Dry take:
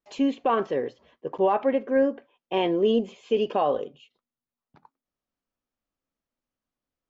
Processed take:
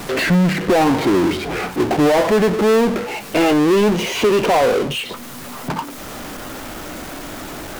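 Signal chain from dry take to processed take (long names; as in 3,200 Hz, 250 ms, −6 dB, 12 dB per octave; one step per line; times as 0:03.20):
gliding playback speed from 63% → 119%
power curve on the samples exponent 0.35
multiband upward and downward compressor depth 40%
level +3.5 dB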